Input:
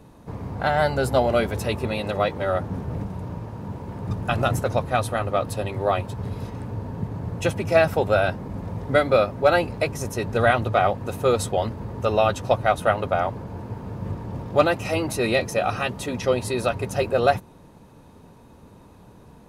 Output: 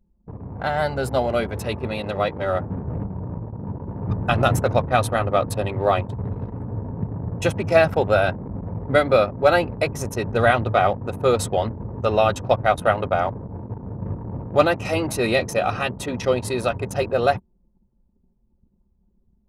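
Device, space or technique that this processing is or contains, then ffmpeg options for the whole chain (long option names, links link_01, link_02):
voice memo with heavy noise removal: -af "anlmdn=6.31,dynaudnorm=framelen=630:gausssize=9:maxgain=11.5dB,volume=-2dB"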